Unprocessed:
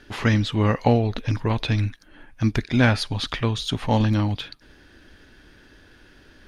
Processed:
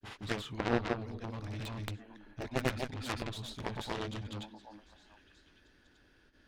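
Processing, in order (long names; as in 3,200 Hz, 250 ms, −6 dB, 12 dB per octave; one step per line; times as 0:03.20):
stylus tracing distortion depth 0.087 ms
granular cloud 136 ms, grains 20 per second, spray 281 ms
echo through a band-pass that steps 384 ms, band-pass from 310 Hz, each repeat 1.4 octaves, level −10.5 dB
harmonic generator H 7 −12 dB, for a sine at −5 dBFS
level −8.5 dB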